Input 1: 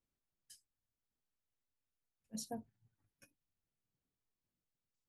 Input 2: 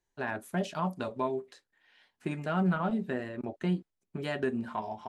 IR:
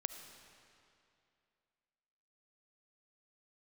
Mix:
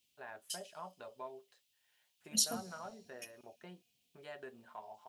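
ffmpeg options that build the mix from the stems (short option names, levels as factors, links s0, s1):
-filter_complex "[0:a]highpass=85,highshelf=f=2000:t=q:w=3:g=13,volume=1,asplit=2[s0][s1];[s1]volume=0.422[s2];[1:a]lowshelf=f=380:t=q:w=1.5:g=-9.5,volume=0.178[s3];[2:a]atrim=start_sample=2205[s4];[s2][s4]afir=irnorm=-1:irlink=0[s5];[s0][s3][s5]amix=inputs=3:normalize=0"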